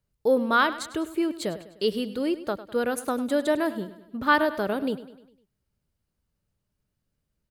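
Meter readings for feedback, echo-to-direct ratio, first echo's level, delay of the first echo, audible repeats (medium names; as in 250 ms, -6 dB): 50%, -13.5 dB, -15.0 dB, 101 ms, 4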